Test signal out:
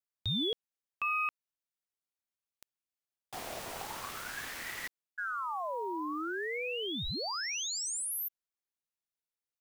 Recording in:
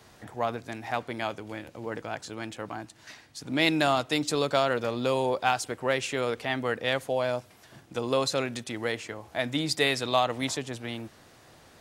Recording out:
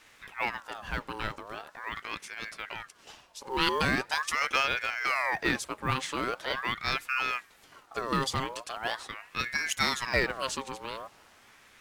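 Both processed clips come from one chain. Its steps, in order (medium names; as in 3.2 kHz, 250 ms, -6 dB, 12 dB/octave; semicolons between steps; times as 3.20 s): short-mantissa float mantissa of 4-bit; ring modulator with a swept carrier 1.3 kHz, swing 50%, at 0.42 Hz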